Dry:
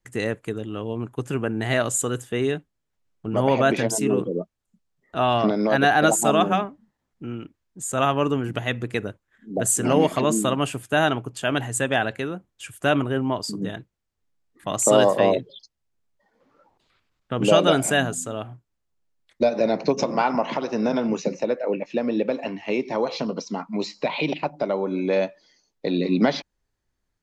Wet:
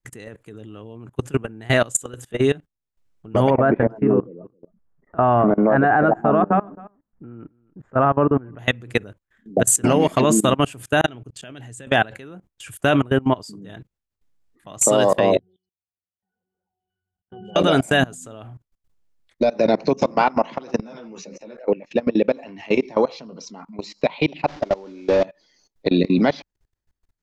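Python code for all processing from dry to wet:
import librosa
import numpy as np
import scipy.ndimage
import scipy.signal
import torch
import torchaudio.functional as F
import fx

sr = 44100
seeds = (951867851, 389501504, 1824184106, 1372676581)

y = fx.chain(x, sr, fx.lowpass(hz=1600.0, slope=24),
    fx.echo_single(ms=267, db=-22.5), at=(3.5, 8.59))
y = fx.chain(y, sr, fx.lowpass(hz=9500.0, slope=12),
    fx.peak_eq(hz=1000.0, db=-7.0, octaves=1.2),
    fx.level_steps(step_db=21), at=(11.01, 11.87))
y = fx.chain(y, sr, fx.peak_eq(hz=660.0, db=5.0, octaves=0.56),
    fx.octave_resonator(note='F#', decay_s=0.35), at=(15.39, 17.56))
y = fx.chain(y, sr, fx.low_shelf(hz=320.0, db=-5.0),
    fx.ensemble(), at=(20.81, 21.63))
y = fx.chain(y, sr, fx.delta_mod(bps=32000, step_db=-37.5),
    fx.peak_eq(hz=170.0, db=-10.0, octaves=0.31), at=(24.47, 25.25))
y = fx.low_shelf(y, sr, hz=71.0, db=7.0)
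y = fx.level_steps(y, sr, step_db=23)
y = y * librosa.db_to_amplitude(7.5)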